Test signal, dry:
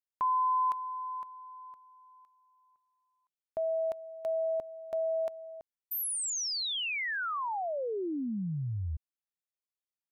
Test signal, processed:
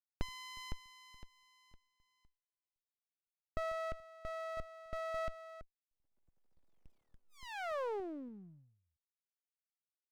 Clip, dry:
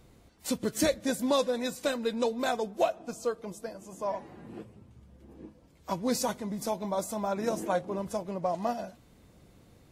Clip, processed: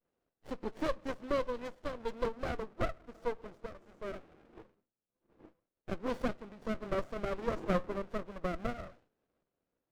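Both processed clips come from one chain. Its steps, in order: high-pass 660 Hz 12 dB/octave; expander -56 dBFS; dynamic bell 1.5 kHz, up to -5 dB, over -49 dBFS, Q 1.5; random-step tremolo 3.5 Hz, depth 55%; tape spacing loss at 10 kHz 38 dB; sliding maximum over 33 samples; trim +8 dB

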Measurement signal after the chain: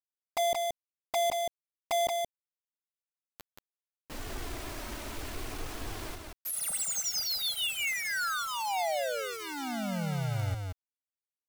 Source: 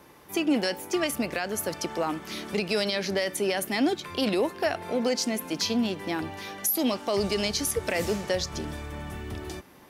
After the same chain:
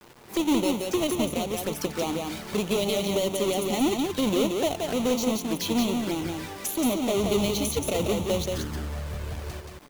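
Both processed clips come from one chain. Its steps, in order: square wave that keeps the level; touch-sensitive flanger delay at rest 10.8 ms, full sweep at -23 dBFS; bit crusher 8-bit; on a send: delay 177 ms -4 dB; on the sum: trim -2.5 dB

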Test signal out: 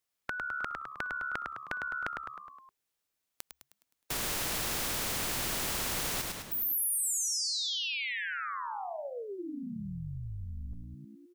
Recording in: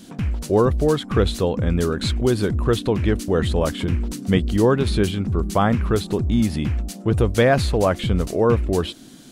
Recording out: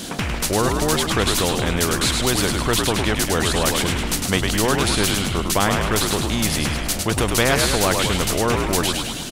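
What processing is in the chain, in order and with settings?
frequency-shifting echo 104 ms, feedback 48%, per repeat -70 Hz, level -6.5 dB; spectrum-flattening compressor 2:1

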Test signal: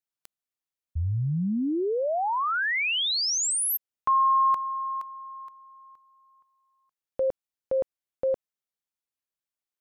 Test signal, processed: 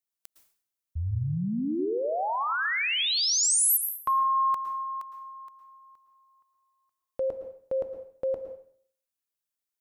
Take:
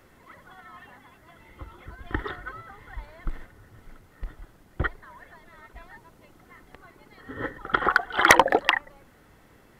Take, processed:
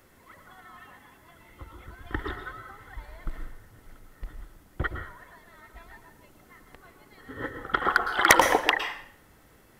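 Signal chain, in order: treble shelf 5.9 kHz +8 dB; plate-style reverb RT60 0.56 s, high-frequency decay 0.95×, pre-delay 100 ms, DRR 7 dB; trim -3 dB

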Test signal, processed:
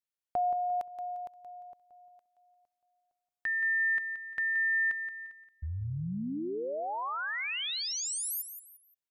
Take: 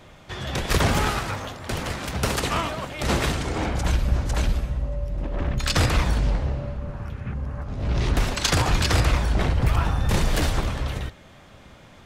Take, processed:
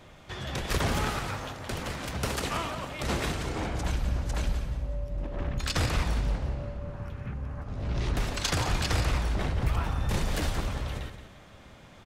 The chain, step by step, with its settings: in parallel at -2.5 dB: compression, threshold -32 dBFS; on the sum: feedback delay 175 ms, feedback 31%, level -10 dB; trim -8.5 dB

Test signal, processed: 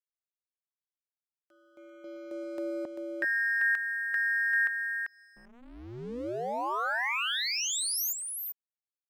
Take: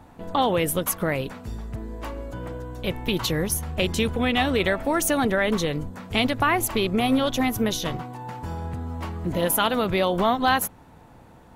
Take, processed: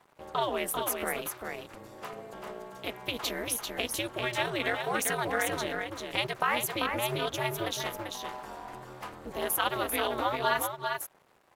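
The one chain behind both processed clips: in parallel at +2 dB: compression, threshold -31 dBFS; on the sum: treble shelf 6.6 kHz +2.5 dB; crossover distortion -42 dBFS; high-pass 360 Hz 12 dB/octave; dynamic bell 1.5 kHz, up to +3 dB, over -35 dBFS, Q 0.83; delay 392 ms -5 dB; ring modulator 120 Hz; trim -7.5 dB

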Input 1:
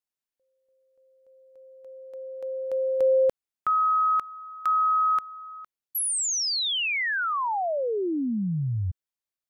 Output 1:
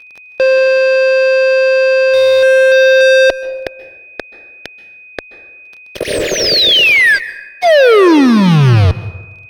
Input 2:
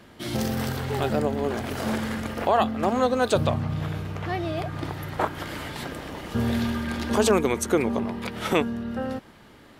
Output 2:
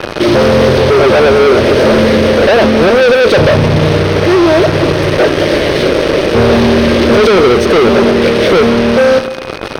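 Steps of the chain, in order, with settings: one-bit delta coder 64 kbps, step -35.5 dBFS; elliptic band-stop 600–1700 Hz, stop band 40 dB; high-order bell 560 Hz +13 dB; fuzz box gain 35 dB, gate -33 dBFS; Chebyshev shaper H 5 -23 dB, 7 -24 dB, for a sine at -10 dBFS; whistle 2.5 kHz -43 dBFS; Savitzky-Golay filter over 15 samples; plate-style reverb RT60 1.1 s, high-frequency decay 0.5×, pre-delay 120 ms, DRR 15.5 dB; trim +7.5 dB

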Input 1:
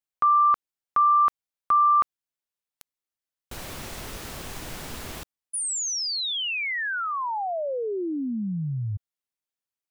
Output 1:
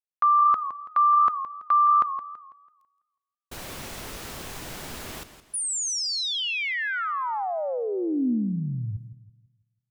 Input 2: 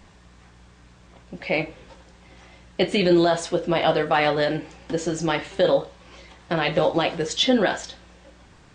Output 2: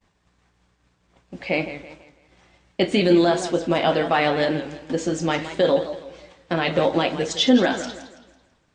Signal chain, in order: dynamic bell 250 Hz, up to +6 dB, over -40 dBFS, Q 2.3; expander -41 dBFS, range -33 dB; bass shelf 110 Hz -4 dB; modulated delay 165 ms, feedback 37%, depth 140 cents, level -12 dB

